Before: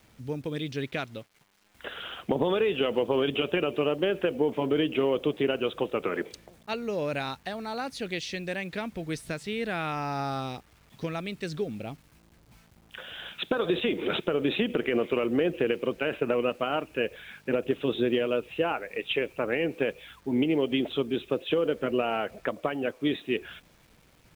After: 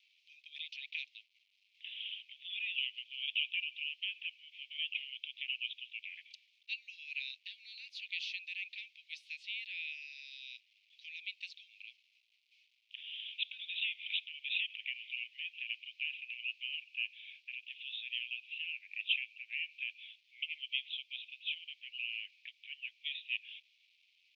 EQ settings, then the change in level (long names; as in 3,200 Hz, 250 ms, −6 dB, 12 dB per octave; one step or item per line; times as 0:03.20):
Butterworth high-pass 2,400 Hz 72 dB per octave
high-frequency loss of the air 260 metres
high-shelf EQ 5,500 Hz −9.5 dB
+6.0 dB